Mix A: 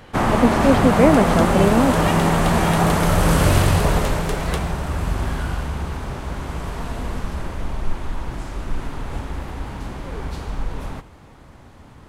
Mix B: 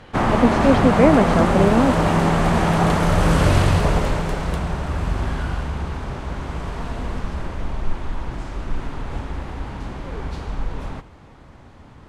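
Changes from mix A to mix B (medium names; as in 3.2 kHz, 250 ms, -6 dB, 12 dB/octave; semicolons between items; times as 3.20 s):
first sound: add distance through air 54 m; second sound -9.0 dB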